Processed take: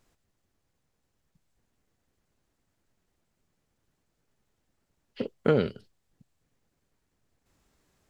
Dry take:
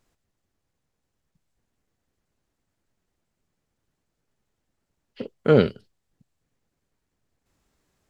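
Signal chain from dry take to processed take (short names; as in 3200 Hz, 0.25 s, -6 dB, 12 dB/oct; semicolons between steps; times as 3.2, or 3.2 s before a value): compressor 5:1, threshold -21 dBFS, peak gain reduction 10 dB; gain +1.5 dB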